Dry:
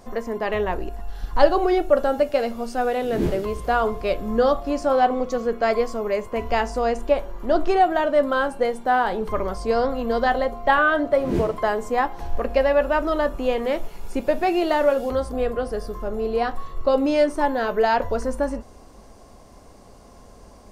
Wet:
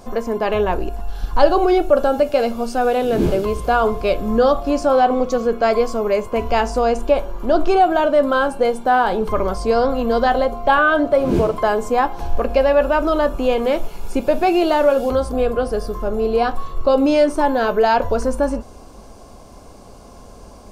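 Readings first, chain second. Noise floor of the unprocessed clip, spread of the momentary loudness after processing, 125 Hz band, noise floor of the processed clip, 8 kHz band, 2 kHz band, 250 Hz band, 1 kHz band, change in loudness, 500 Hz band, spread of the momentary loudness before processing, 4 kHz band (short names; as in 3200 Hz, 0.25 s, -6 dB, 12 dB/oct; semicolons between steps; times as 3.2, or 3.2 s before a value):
-47 dBFS, 7 LU, +5.5 dB, -41 dBFS, n/a, +3.0 dB, +5.5 dB, +4.5 dB, +4.5 dB, +4.5 dB, 8 LU, +4.5 dB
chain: notch 1900 Hz, Q 5.6; in parallel at 0 dB: limiter -15 dBFS, peak gain reduction 11 dB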